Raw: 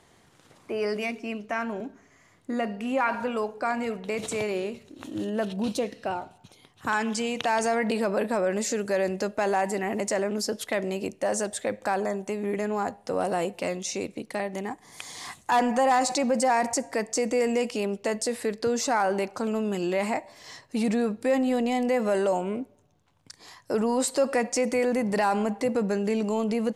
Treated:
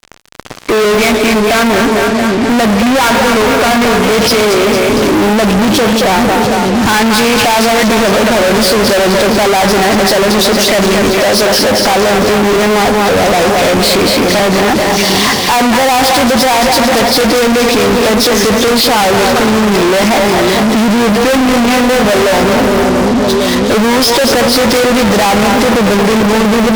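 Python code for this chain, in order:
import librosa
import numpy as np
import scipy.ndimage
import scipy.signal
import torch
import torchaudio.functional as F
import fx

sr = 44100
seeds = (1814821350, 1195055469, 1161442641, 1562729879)

y = fx.freq_compress(x, sr, knee_hz=2100.0, ratio=1.5)
y = fx.echo_split(y, sr, split_hz=410.0, low_ms=570, high_ms=227, feedback_pct=52, wet_db=-8.0)
y = fx.fuzz(y, sr, gain_db=50.0, gate_db=-51.0)
y = y * librosa.db_to_amplitude(5.0)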